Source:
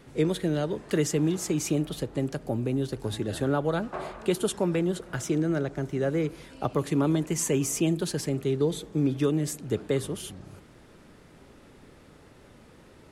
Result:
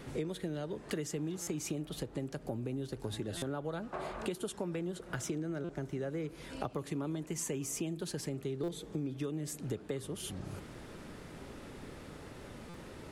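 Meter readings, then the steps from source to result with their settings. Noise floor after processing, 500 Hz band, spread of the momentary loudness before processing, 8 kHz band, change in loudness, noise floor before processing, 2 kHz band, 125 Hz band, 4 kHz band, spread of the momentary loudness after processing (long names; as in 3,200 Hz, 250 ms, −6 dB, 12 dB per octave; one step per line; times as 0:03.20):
−51 dBFS, −11.0 dB, 6 LU, −8.5 dB, −11.5 dB, −54 dBFS, −8.5 dB, −10.5 dB, −8.0 dB, 11 LU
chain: downward compressor 5 to 1, threshold −41 dBFS, peak gain reduction 19 dB
buffer that repeats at 0:01.42/0:03.37/0:05.64/0:08.63/0:12.69, samples 256, times 8
level +4.5 dB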